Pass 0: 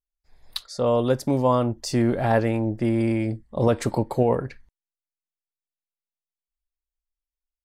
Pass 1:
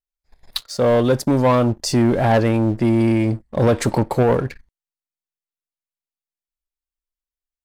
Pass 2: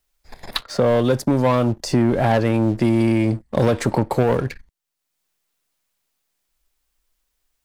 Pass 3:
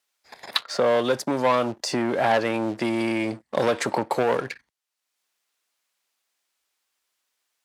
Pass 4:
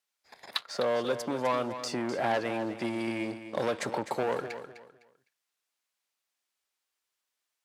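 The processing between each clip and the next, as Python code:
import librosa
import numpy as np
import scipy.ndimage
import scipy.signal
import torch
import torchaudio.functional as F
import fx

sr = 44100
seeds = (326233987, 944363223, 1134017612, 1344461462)

y1 = fx.leveller(x, sr, passes=2)
y2 = fx.band_squash(y1, sr, depth_pct=70)
y2 = F.gain(torch.from_numpy(y2), -1.5).numpy()
y3 = fx.weighting(y2, sr, curve='A')
y4 = fx.echo_feedback(y3, sr, ms=254, feedback_pct=26, wet_db=-11.0)
y4 = F.gain(torch.from_numpy(y4), -8.0).numpy()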